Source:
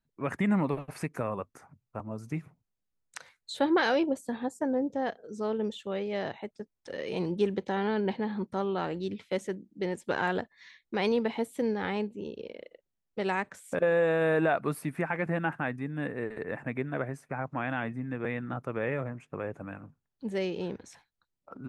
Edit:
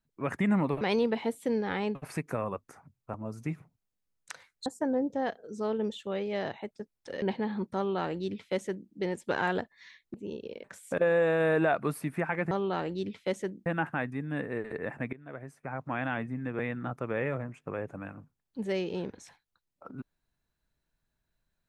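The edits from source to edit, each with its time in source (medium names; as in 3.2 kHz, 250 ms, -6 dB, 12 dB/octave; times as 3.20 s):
3.52–4.46 s: delete
7.02–8.02 s: delete
8.56–9.71 s: copy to 15.32 s
10.94–12.08 s: move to 0.81 s
12.58–13.45 s: delete
16.79–17.65 s: fade in, from -21 dB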